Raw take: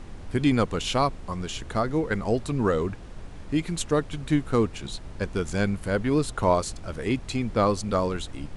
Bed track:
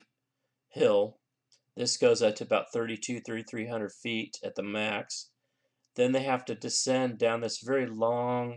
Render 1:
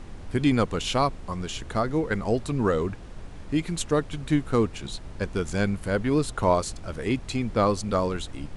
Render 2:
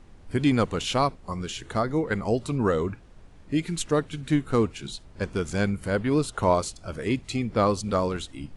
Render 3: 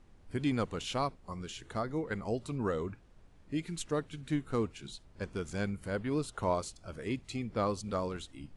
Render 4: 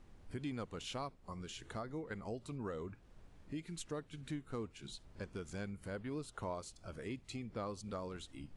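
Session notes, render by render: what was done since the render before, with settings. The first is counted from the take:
no audible change
noise print and reduce 10 dB
trim -9.5 dB
compression 2:1, threshold -47 dBFS, peak gain reduction 12 dB

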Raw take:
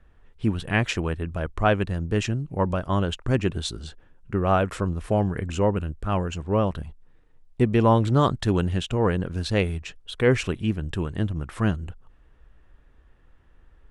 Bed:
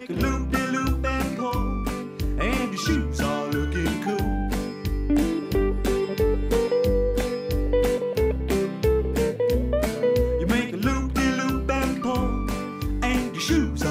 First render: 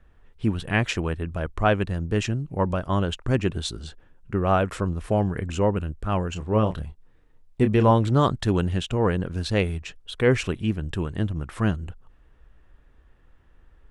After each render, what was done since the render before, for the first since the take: 6.33–7.91 s: doubling 28 ms -8.5 dB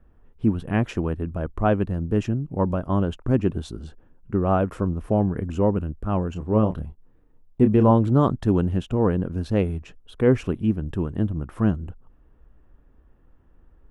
ten-band graphic EQ 250 Hz +5 dB, 2 kHz -7 dB, 4 kHz -10 dB, 8 kHz -10 dB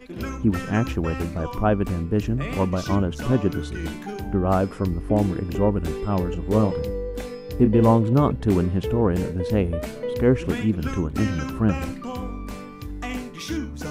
add bed -7 dB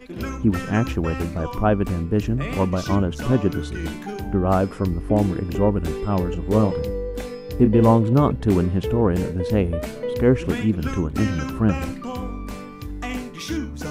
trim +1.5 dB

